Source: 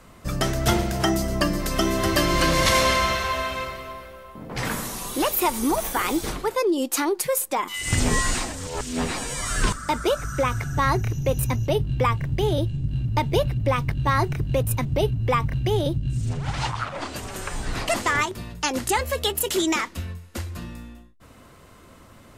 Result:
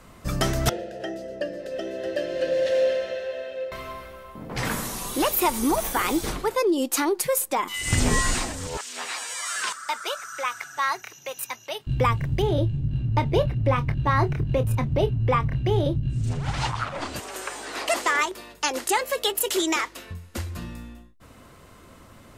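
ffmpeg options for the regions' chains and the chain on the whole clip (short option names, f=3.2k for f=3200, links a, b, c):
-filter_complex "[0:a]asettb=1/sr,asplit=3[a][b][c];[a]atrim=end=0.694[d];[b]atrim=start=0.69:end=3.72,asetpts=PTS-STARTPTS,afade=t=in:d=0.004:c=qsin,afade=t=out:st=3.026:d=0.004:c=qsin,equalizer=f=2.2k:w=2.1:g=-12,acontrast=66,asplit=3[e][f][g];[e]bandpass=f=530:t=q:w=8,volume=0dB[h];[f]bandpass=f=1.84k:t=q:w=8,volume=-6dB[i];[g]bandpass=f=2.48k:t=q:w=8,volume=-9dB[j];[h][i][j]amix=inputs=3:normalize=0[k];[c]atrim=start=3.716[l];[d][k]acrossfade=d=0.004:c1=hsin:c2=qsin[m];[m][l]acrossfade=d=0.004:c1=qsin:c2=hsin,asettb=1/sr,asplit=3[n][o][p];[n]atrim=end=8.774[q];[o]atrim=start=8.77:end=11.87,asetpts=PTS-STARTPTS,afade=t=in:d=0.004:c=qsin,afade=t=out:st=3.096:d=0.004:c=qsin,highpass=1k,equalizer=f=11k:t=o:w=0.56:g=-4[r];[p]atrim=start=11.866[s];[q][r]acrossfade=d=0.004:c1=hsin:c2=qsin[t];[t][s]acrossfade=d=0.004:c1=qsin:c2=hsin,asettb=1/sr,asplit=3[u][v][w];[u]atrim=end=12.424[x];[v]atrim=start=12.42:end=16.24,asetpts=PTS-STARTPTS,afade=t=in:d=0.004:c=qsin,afade=t=out:st=3.816:d=0.004:c=qsin,lowpass=f=2.5k:p=1,asplit=2[y][z];[z]adelay=27,volume=-11dB[aa];[y][aa]amix=inputs=2:normalize=0,atrim=end_sample=168462[ab];[w]atrim=start=16.236[ac];[x][ab]acrossfade=d=0.004:c1=hsin:c2=qsin[ad];[ad][ac]acrossfade=d=0.004:c1=qsin:c2=hsin,asettb=1/sr,asplit=3[ae][af][ag];[ae]atrim=end=17.204[ah];[af]atrim=start=17.2:end=20.11,asetpts=PTS-STARTPTS,afade=t=in:d=0.004:c=qsin,afade=t=out:st=2.906:d=0.004:c=qsin,highpass=f=320:w=0.5412,highpass=f=320:w=1.3066,aeval=exprs='val(0)+0.00158*(sin(2*PI*50*n/s)+sin(2*PI*2*50*n/s)/2+sin(2*PI*3*50*n/s)/3+sin(2*PI*4*50*n/s)/4+sin(2*PI*5*50*n/s)/5)':c=same[ai];[ag]atrim=start=20.106[aj];[ah][ai]acrossfade=d=0.004:c1=hsin:c2=qsin[ak];[ak][aj]acrossfade=d=0.004:c1=qsin:c2=hsin"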